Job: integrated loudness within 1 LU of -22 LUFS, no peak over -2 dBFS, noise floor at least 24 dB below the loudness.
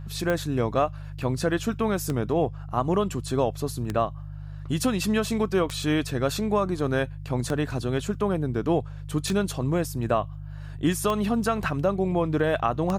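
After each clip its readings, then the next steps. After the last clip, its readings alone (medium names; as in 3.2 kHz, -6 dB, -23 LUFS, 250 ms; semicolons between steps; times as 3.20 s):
clicks found 8; hum 50 Hz; highest harmonic 150 Hz; hum level -34 dBFS; loudness -26.5 LUFS; peak level -11.0 dBFS; loudness target -22.0 LUFS
-> de-click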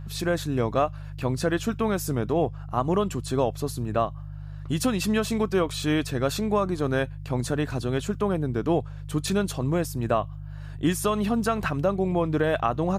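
clicks found 0; hum 50 Hz; highest harmonic 150 Hz; hum level -34 dBFS
-> de-hum 50 Hz, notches 3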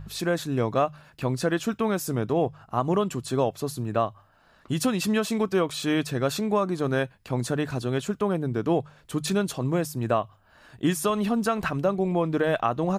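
hum not found; loudness -26.5 LUFS; peak level -12.0 dBFS; loudness target -22.0 LUFS
-> trim +4.5 dB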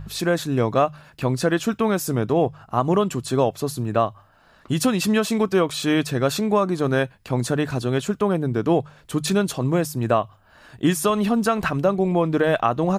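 loudness -22.0 LUFS; peak level -7.5 dBFS; noise floor -54 dBFS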